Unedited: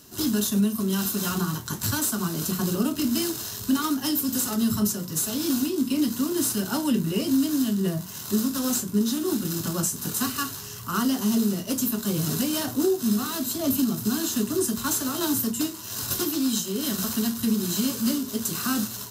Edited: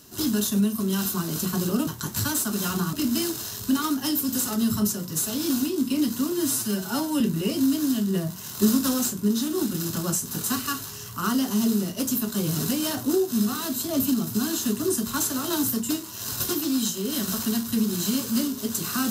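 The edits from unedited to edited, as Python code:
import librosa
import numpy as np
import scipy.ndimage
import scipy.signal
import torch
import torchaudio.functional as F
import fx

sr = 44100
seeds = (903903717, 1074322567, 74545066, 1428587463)

y = fx.edit(x, sr, fx.swap(start_s=1.14, length_s=0.4, other_s=2.2, other_length_s=0.73),
    fx.stretch_span(start_s=6.32, length_s=0.59, factor=1.5),
    fx.clip_gain(start_s=8.32, length_s=0.32, db=4.0), tone=tone)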